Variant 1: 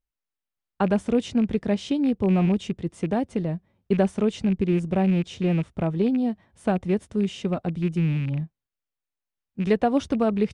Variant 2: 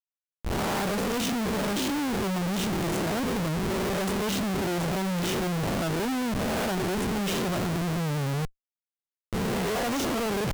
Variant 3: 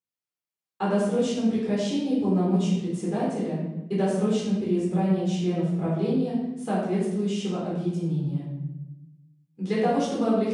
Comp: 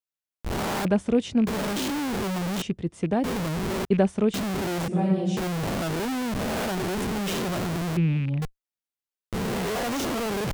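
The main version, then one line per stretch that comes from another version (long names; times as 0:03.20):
2
0:00.85–0:01.47: punch in from 1
0:02.62–0:03.24: punch in from 1
0:03.85–0:04.34: punch in from 1
0:04.88–0:05.37: punch in from 3
0:07.97–0:08.42: punch in from 1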